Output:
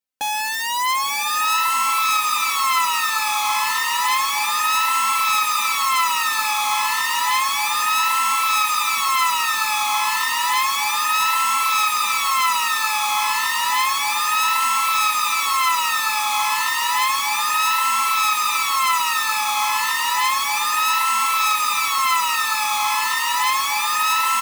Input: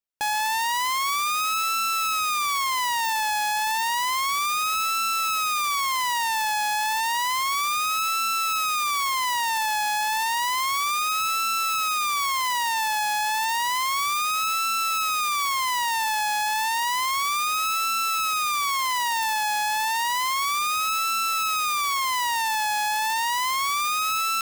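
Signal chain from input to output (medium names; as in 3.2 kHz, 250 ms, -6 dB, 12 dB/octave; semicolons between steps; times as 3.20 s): high-pass 70 Hz 6 dB/octave; comb 3.9 ms, depth 98%; echo that smears into a reverb 921 ms, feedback 55%, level -4 dB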